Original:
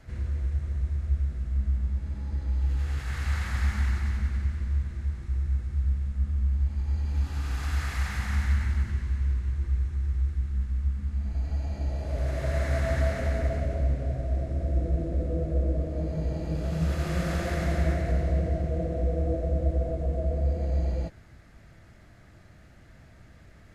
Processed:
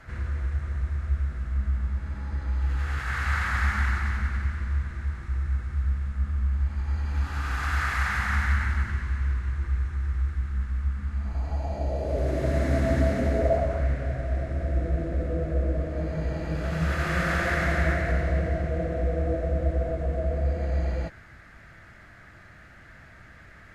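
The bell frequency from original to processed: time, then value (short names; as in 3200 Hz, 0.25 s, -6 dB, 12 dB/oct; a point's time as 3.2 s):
bell +12.5 dB 1.5 oct
11.15 s 1400 Hz
12.53 s 280 Hz
13.26 s 280 Hz
13.86 s 1600 Hz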